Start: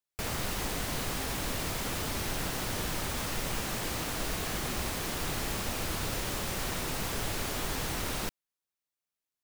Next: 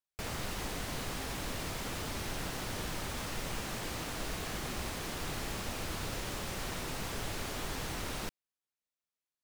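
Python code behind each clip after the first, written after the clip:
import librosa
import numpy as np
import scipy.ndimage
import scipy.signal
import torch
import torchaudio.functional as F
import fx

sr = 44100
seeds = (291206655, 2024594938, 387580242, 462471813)

y = fx.high_shelf(x, sr, hz=11000.0, db=-7.0)
y = y * librosa.db_to_amplitude(-4.0)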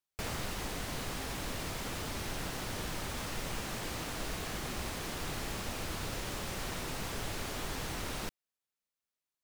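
y = fx.rider(x, sr, range_db=10, speed_s=0.5)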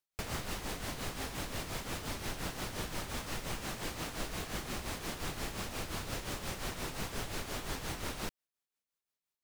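y = x * (1.0 - 0.6 / 2.0 + 0.6 / 2.0 * np.cos(2.0 * np.pi * 5.7 * (np.arange(len(x)) / sr)))
y = y * librosa.db_to_amplitude(1.5)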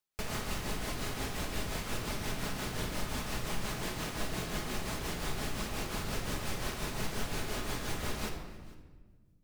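y = x + 10.0 ** (-22.5 / 20.0) * np.pad(x, (int(453 * sr / 1000.0), 0))[:len(x)]
y = fx.room_shoebox(y, sr, seeds[0], volume_m3=1300.0, walls='mixed', distance_m=1.4)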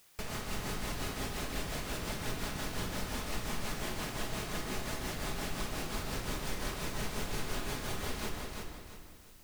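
y = fx.quant_dither(x, sr, seeds[1], bits=10, dither='triangular')
y = fx.echo_feedback(y, sr, ms=340, feedback_pct=33, wet_db=-4)
y = y * librosa.db_to_amplitude(-2.5)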